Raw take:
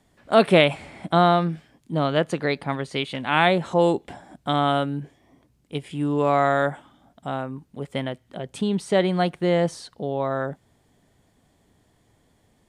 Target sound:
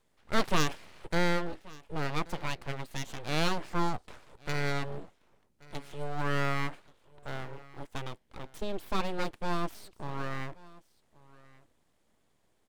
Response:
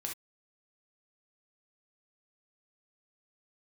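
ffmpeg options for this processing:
-af "aecho=1:1:1130:0.0794,aeval=exprs='abs(val(0))':channel_layout=same,volume=-8dB"

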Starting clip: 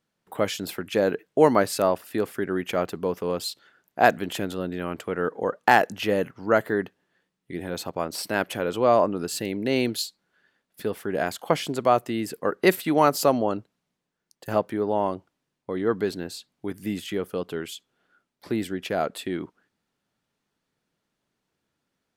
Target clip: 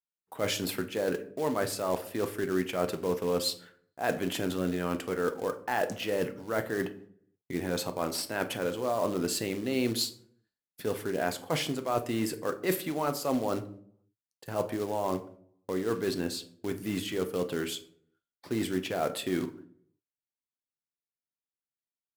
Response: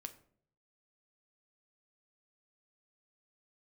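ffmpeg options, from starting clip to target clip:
-filter_complex "[0:a]agate=range=-33dB:threshold=-49dB:ratio=3:detection=peak,areverse,acompressor=threshold=-27dB:ratio=12,areverse,acrusher=bits=4:mode=log:mix=0:aa=0.000001[link_01];[1:a]atrim=start_sample=2205,asetrate=42336,aresample=44100[link_02];[link_01][link_02]afir=irnorm=-1:irlink=0,volume=5.5dB"

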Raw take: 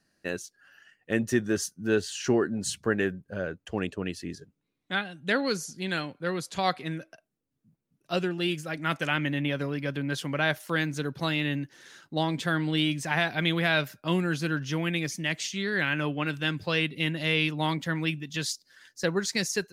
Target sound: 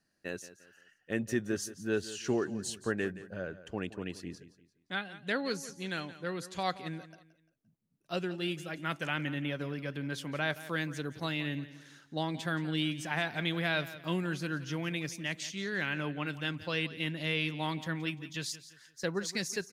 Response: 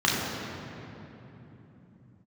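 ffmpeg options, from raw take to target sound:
-af "aecho=1:1:173|346|519:0.168|0.0621|0.023,volume=-6.5dB"

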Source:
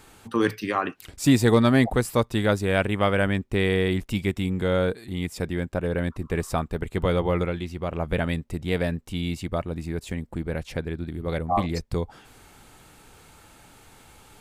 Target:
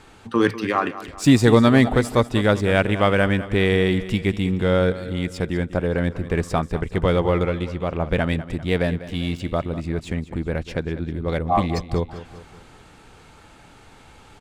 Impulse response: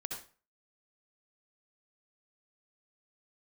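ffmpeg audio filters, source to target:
-filter_complex "[0:a]adynamicsmooth=sensitivity=6.5:basefreq=6400,asettb=1/sr,asplit=3[link_01][link_02][link_03];[link_01]atrim=end=8.974[link_04];[link_02]atrim=start=8.97:end=9.4,asetpts=PTS-STARTPTS,afade=type=in:duration=0.004:curve=qsin,afade=type=out:start_time=0.426:duration=0.004:curve=qsin,aeval=exprs='sgn(val(0))*max(abs(val(0))-0.00531,0)':channel_layout=same[link_05];[link_03]atrim=start=9.396[link_06];[link_04][link_05]acrossfade=duration=0.004:curve1=hsin:curve2=qsin[link_07];[link_07][link_06]acrossfade=duration=0.004:curve1=qsin:curve2=hsin,aecho=1:1:197|394|591|788|985:0.188|0.0923|0.0452|0.0222|0.0109,volume=4dB"

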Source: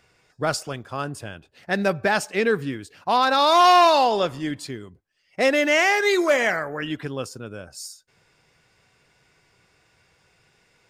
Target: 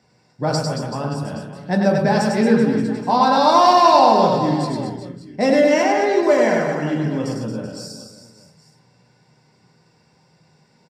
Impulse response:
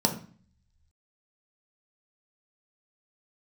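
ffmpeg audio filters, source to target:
-filter_complex "[0:a]asettb=1/sr,asplit=3[link_01][link_02][link_03];[link_01]atrim=end=5.824[link_04];[link_02]atrim=start=5.82:end=6.23,asetpts=PTS-STARTPTS,afade=type=in:duration=0.004:curve=qsin,afade=type=out:start_time=0.406:duration=0.004:curve=qsin,lowpass=frequency=1400:poles=1[link_05];[link_03]atrim=start=6.226[link_06];[link_04][link_05]acrossfade=duration=0.004:curve1=hsin:curve2=qsin[link_07];[link_07][link_06]acrossfade=duration=0.004:curve1=qsin:curve2=hsin,aecho=1:1:100|225|381.2|576.6|820.7:0.631|0.398|0.251|0.158|0.1,asoftclip=type=tanh:threshold=-4.5dB[link_08];[1:a]atrim=start_sample=2205[link_09];[link_08][link_09]afir=irnorm=-1:irlink=0,volume=-11dB"

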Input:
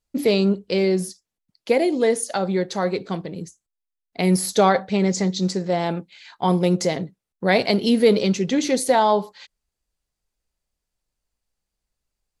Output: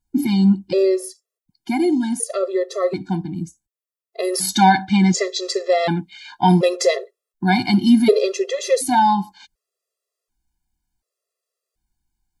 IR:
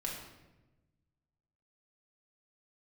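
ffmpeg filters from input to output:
-af "asetnsamples=nb_out_samples=441:pad=0,asendcmd='4.34 equalizer g 2.5;6.96 equalizer g -4.5',equalizer=frequency=2900:width=0.48:gain=-7.5,afftfilt=real='re*gt(sin(2*PI*0.68*pts/sr)*(1-2*mod(floor(b*sr/1024/350),2)),0)':imag='im*gt(sin(2*PI*0.68*pts/sr)*(1-2*mod(floor(b*sr/1024/350),2)),0)':win_size=1024:overlap=0.75,volume=6.5dB"

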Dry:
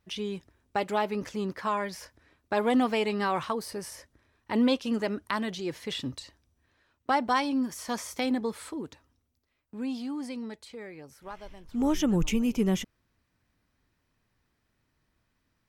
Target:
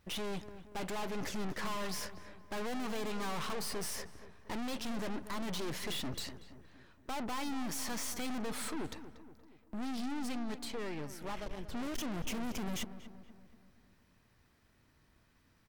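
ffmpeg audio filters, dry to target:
ffmpeg -i in.wav -filter_complex "[0:a]alimiter=limit=-21dB:level=0:latency=1:release=188,aeval=exprs='(tanh(251*val(0)+0.75)-tanh(0.75))/251':channel_layout=same,asplit=2[link_01][link_02];[link_02]adelay=236,lowpass=frequency=1800:poles=1,volume=-12dB,asplit=2[link_03][link_04];[link_04]adelay=236,lowpass=frequency=1800:poles=1,volume=0.55,asplit=2[link_05][link_06];[link_06]adelay=236,lowpass=frequency=1800:poles=1,volume=0.55,asplit=2[link_07][link_08];[link_08]adelay=236,lowpass=frequency=1800:poles=1,volume=0.55,asplit=2[link_09][link_10];[link_10]adelay=236,lowpass=frequency=1800:poles=1,volume=0.55,asplit=2[link_11][link_12];[link_12]adelay=236,lowpass=frequency=1800:poles=1,volume=0.55[link_13];[link_01][link_03][link_05][link_07][link_09][link_11][link_13]amix=inputs=7:normalize=0,volume=10dB" out.wav

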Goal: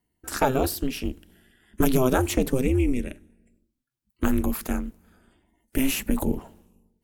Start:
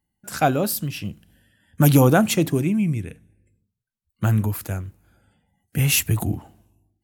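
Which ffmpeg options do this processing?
ffmpeg -i in.wav -filter_complex "[0:a]acrossover=split=1800|5400[link_01][link_02][link_03];[link_01]acompressor=threshold=-20dB:ratio=4[link_04];[link_02]acompressor=threshold=-39dB:ratio=4[link_05];[link_03]acompressor=threshold=-34dB:ratio=4[link_06];[link_04][link_05][link_06]amix=inputs=3:normalize=0,aeval=exprs='val(0)*sin(2*PI*130*n/s)':channel_layout=same,volume=4.5dB" out.wav

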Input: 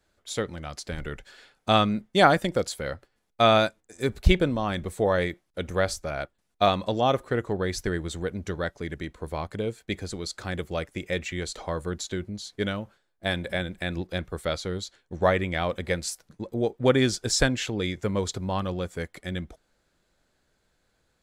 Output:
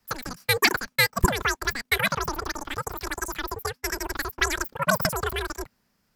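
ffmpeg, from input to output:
ffmpeg -i in.wav -af "afreqshift=-75,asetrate=152145,aresample=44100" out.wav

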